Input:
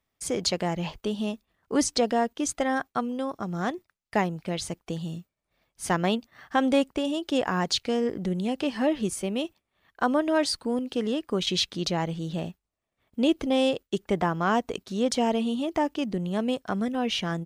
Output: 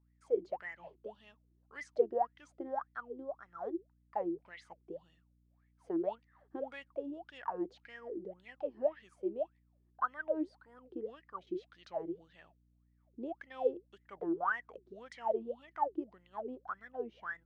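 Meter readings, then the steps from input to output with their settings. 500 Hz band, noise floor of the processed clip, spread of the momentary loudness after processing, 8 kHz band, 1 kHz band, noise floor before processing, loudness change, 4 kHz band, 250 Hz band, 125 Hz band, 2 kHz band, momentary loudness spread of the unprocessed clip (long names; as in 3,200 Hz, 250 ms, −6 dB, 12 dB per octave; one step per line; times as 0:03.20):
−9.5 dB, −71 dBFS, 15 LU, below −35 dB, −10.0 dB, −83 dBFS, −12.0 dB, −31.5 dB, −16.5 dB, −28.5 dB, −10.5 dB, 8 LU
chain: LFO wah 1.8 Hz 330–2,000 Hz, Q 21
mains hum 60 Hz, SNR 31 dB
level +5 dB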